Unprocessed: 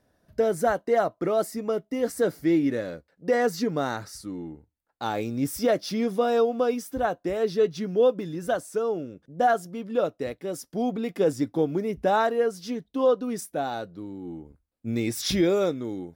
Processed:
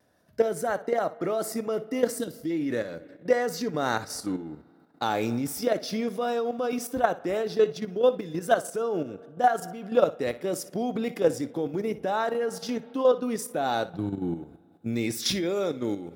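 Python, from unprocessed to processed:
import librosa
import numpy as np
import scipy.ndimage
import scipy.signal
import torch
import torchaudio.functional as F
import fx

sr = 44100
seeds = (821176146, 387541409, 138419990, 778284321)

y = fx.vibrato(x, sr, rate_hz=0.36, depth_cents=9.5)
y = fx.rider(y, sr, range_db=4, speed_s=0.5)
y = fx.spec_box(y, sr, start_s=2.19, length_s=0.31, low_hz=350.0, high_hz=2700.0, gain_db=-12)
y = fx.peak_eq(y, sr, hz=120.0, db=12.5, octaves=1.2, at=(13.93, 14.33), fade=0.02)
y = fx.rev_spring(y, sr, rt60_s=2.5, pass_ms=(32, 47), chirp_ms=60, drr_db=19.5)
y = fx.level_steps(y, sr, step_db=10)
y = scipy.signal.sosfilt(scipy.signal.butter(2, 85.0, 'highpass', fs=sr, output='sos'), y)
y = fx.low_shelf(y, sr, hz=480.0, db=-3.5)
y = fx.room_flutter(y, sr, wall_m=10.2, rt60_s=0.22)
y = y * librosa.db_to_amplitude(5.0)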